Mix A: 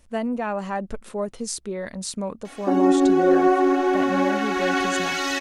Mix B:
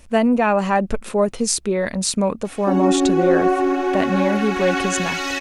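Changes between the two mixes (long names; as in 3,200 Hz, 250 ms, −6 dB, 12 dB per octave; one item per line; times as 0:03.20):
speech +9.5 dB
master: add parametric band 2,500 Hz +5 dB 0.23 octaves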